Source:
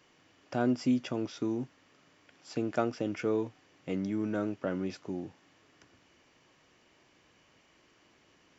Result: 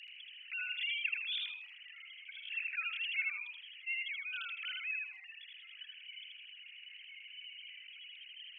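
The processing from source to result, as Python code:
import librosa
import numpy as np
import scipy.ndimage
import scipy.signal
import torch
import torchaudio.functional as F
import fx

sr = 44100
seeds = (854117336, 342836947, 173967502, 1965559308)

y = fx.sine_speech(x, sr)
y = fx.noise_reduce_blind(y, sr, reduce_db=10)
y = scipy.signal.sosfilt(scipy.signal.butter(6, 2500.0, 'highpass', fs=sr, output='sos'), y)
y = fx.echo_feedback(y, sr, ms=79, feedback_pct=16, wet_db=-4.0)
y = fx.env_flatten(y, sr, amount_pct=50)
y = y * librosa.db_to_amplitude(16.5)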